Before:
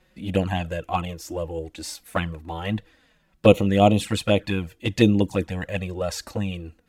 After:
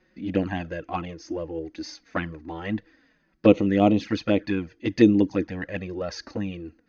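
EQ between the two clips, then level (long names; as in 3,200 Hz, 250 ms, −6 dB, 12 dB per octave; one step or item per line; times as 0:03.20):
Chebyshev low-pass with heavy ripple 6,500 Hz, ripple 9 dB
parametric band 300 Hz +14 dB 1.1 octaves
0.0 dB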